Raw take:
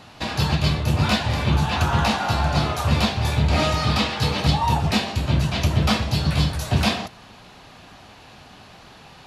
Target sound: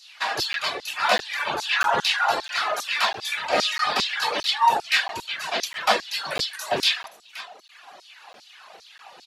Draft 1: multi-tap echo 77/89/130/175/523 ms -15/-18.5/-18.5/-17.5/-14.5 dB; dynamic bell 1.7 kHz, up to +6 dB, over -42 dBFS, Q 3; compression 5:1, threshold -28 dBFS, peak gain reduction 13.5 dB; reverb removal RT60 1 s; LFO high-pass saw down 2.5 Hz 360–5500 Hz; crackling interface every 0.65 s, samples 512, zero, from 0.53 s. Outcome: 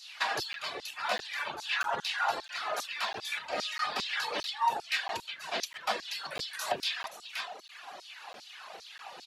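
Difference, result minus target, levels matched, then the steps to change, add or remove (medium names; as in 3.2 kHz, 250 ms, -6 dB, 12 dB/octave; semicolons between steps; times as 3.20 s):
compression: peak gain reduction +13.5 dB
remove: compression 5:1, threshold -28 dBFS, peak gain reduction 13.5 dB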